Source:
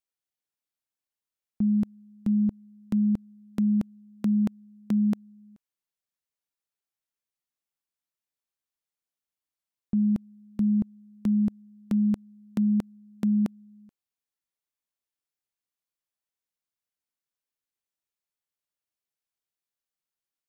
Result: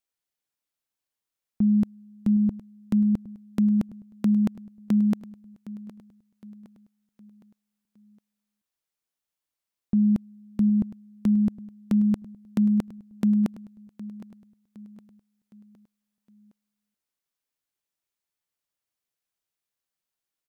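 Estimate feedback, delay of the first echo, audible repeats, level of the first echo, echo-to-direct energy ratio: 45%, 763 ms, 3, -16.5 dB, -15.5 dB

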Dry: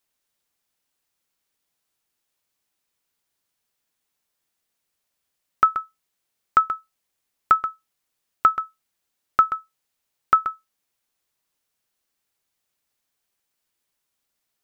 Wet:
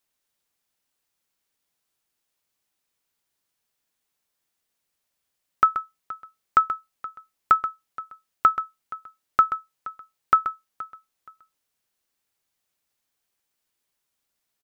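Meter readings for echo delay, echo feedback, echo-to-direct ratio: 473 ms, 23%, -18.0 dB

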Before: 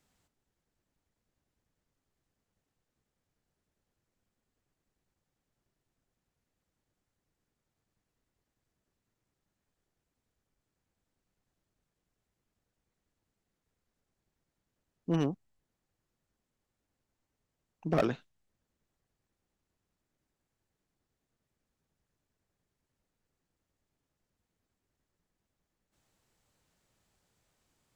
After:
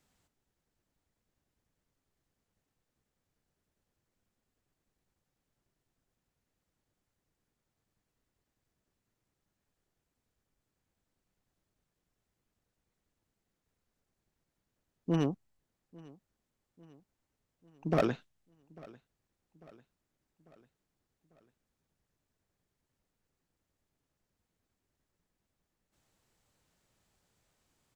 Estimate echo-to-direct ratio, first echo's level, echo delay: -21.5 dB, -23.0 dB, 846 ms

